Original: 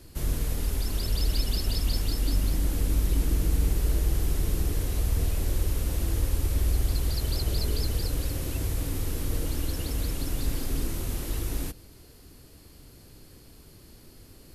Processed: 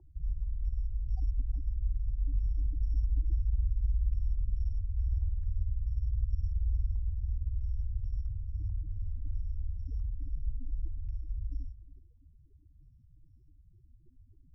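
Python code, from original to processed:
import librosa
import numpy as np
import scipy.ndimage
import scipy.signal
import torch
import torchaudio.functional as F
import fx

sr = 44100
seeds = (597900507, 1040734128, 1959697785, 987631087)

y = fx.spec_topn(x, sr, count=4)
y = fx.doubler(y, sr, ms=36.0, db=-11.0, at=(4.71, 6.42))
y = y + 10.0 ** (-16.5 / 20.0) * np.pad(y, (int(360 * sr / 1000.0), 0))[:len(y)]
y = np.repeat(y[::8], 8)[:len(y)]
y = fx.filter_held_lowpass(y, sr, hz=4.6, low_hz=830.0, high_hz=2900.0)
y = y * librosa.db_to_amplitude(-5.0)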